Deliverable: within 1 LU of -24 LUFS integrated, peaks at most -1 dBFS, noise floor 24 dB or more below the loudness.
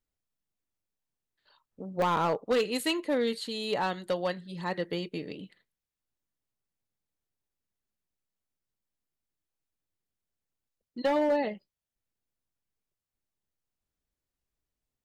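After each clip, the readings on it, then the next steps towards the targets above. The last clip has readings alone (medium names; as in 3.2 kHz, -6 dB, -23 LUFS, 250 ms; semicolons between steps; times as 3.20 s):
clipped samples 0.5%; clipping level -21.0 dBFS; dropouts 1; longest dropout 1.3 ms; loudness -30.0 LUFS; peak level -21.0 dBFS; loudness target -24.0 LUFS
-> clip repair -21 dBFS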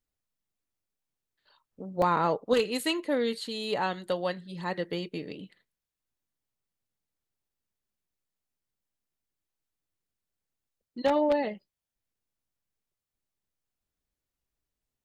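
clipped samples 0.0%; dropouts 1; longest dropout 1.3 ms
-> interpolate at 2.02 s, 1.3 ms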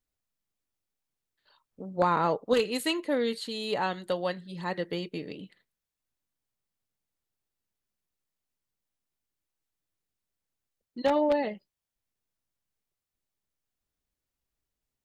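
dropouts 0; loudness -29.5 LUFS; peak level -10.5 dBFS; loudness target -24.0 LUFS
-> trim +5.5 dB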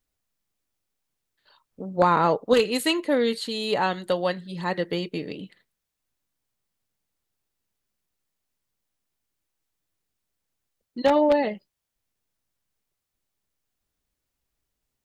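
loudness -24.0 LUFS; peak level -5.0 dBFS; noise floor -83 dBFS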